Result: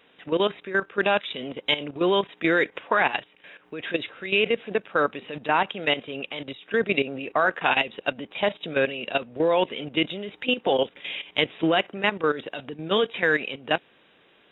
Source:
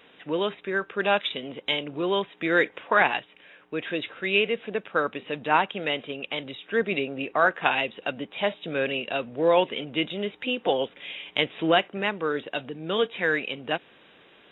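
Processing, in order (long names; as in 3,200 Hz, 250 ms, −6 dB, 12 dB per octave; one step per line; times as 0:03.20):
output level in coarse steps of 13 dB
level +6 dB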